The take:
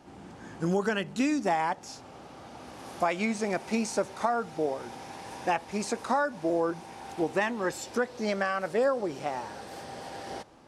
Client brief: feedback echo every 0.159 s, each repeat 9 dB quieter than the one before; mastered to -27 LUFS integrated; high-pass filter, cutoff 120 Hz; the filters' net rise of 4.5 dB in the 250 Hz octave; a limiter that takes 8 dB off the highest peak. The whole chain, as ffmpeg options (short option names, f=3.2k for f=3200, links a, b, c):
-af "highpass=120,equalizer=f=250:t=o:g=6,alimiter=limit=-20.5dB:level=0:latency=1,aecho=1:1:159|318|477|636:0.355|0.124|0.0435|0.0152,volume=4dB"